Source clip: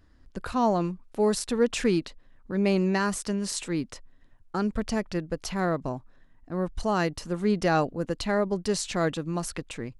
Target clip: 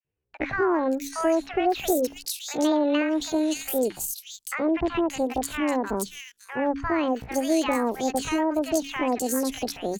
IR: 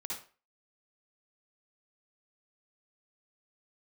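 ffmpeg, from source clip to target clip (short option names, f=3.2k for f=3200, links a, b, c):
-filter_complex "[0:a]highpass=f=65:p=1,bandreject=f=60:t=h:w=6,bandreject=f=120:t=h:w=6,bandreject=f=180:t=h:w=6,agate=range=-29dB:threshold=-52dB:ratio=16:detection=peak,highshelf=f=4.7k:g=3,acrossover=split=690|2200[a][b][c];[a]adelay=70[d];[c]adelay=570[e];[d][b][e]amix=inputs=3:normalize=0,acrossover=split=220|590[f][g][h];[f]acompressor=threshold=-36dB:ratio=4[i];[g]acompressor=threshold=-32dB:ratio=4[j];[h]acompressor=threshold=-37dB:ratio=4[k];[i][j][k]amix=inputs=3:normalize=0,asetrate=68011,aresample=44100,atempo=0.64842,adynamicequalizer=threshold=0.00631:dfrequency=1100:dqfactor=0.91:tfrequency=1100:tqfactor=0.91:attack=5:release=100:ratio=0.375:range=2:mode=cutabove:tftype=bell,volume=8dB"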